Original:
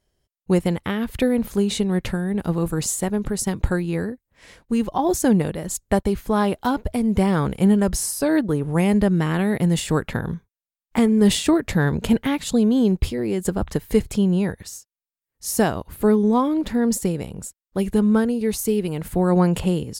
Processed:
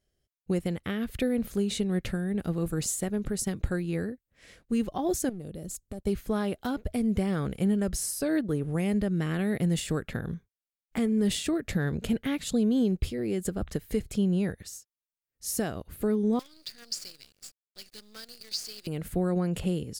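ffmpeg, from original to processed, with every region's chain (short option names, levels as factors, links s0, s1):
-filter_complex "[0:a]asettb=1/sr,asplit=3[s0][s1][s2];[s0]atrim=end=5.294[s3];[s1]atrim=start=5.29:end=6.07,asetpts=PTS-STARTPTS,afade=t=in:d=0.004:c=qsin,afade=t=out:st=0.776:d=0.004:c=qsin,equalizer=f=1700:t=o:w=1.8:g=-14,aeval=exprs='clip(val(0),-1,0.075)':c=same,acompressor=threshold=0.0398:ratio=4:attack=3.2:release=140:knee=1:detection=peak[s4];[s2]atrim=start=6.066[s5];[s3][s4]acrossfade=d=0.004:c1=hsin:c2=qsin[s6];[s6][s5]acrossfade=d=0.004:c1=qsin:c2=hsin,asettb=1/sr,asplit=3[s7][s8][s9];[s7]atrim=end=16.394[s10];[s8]atrim=start=16.39:end=18.87,asetpts=PTS-STARTPTS,afade=t=in:d=0.004:c=qsin,afade=t=out:st=2.476:d=0.004:c=qsin,lowpass=f=4700:t=q:w=11,aderivative,acrusher=bits=7:dc=4:mix=0:aa=0.000001[s11];[s9]atrim=start=18.866[s12];[s10][s11]acrossfade=d=0.004:c1=hsin:c2=qsin[s13];[s13][s12]acrossfade=d=0.004:c1=qsin:c2=hsin,alimiter=limit=0.282:level=0:latency=1:release=259,equalizer=f=940:t=o:w=0.41:g=-11,volume=0.501"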